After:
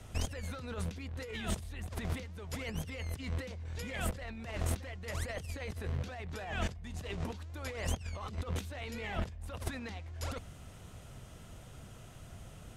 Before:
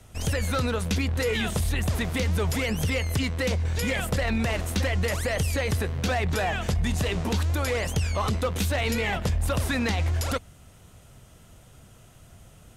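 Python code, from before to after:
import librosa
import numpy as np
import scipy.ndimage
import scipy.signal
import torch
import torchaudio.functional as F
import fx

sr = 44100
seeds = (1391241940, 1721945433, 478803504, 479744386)

y = fx.high_shelf(x, sr, hz=9000.0, db=-8.0)
y = fx.over_compress(y, sr, threshold_db=-31.0, ratio=-0.5)
y = y * librosa.db_to_amplitude(-6.0)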